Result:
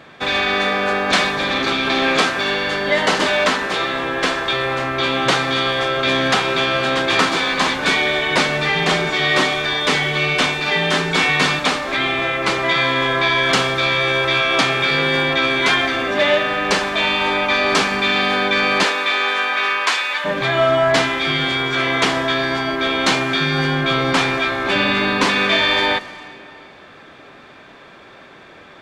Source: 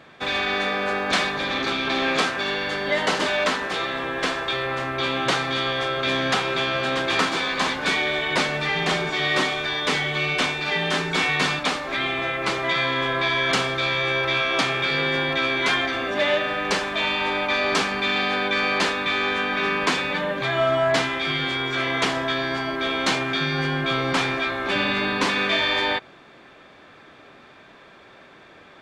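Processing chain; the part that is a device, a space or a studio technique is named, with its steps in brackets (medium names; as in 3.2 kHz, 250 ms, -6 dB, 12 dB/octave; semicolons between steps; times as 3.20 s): saturated reverb return (on a send at -12 dB: reverberation RT60 2.2 s, pre-delay 96 ms + saturation -24 dBFS, distortion -11 dB); 18.83–20.24 s: on the sum: high-pass 360 Hz -> 1.1 kHz 12 dB/octave; trim +5.5 dB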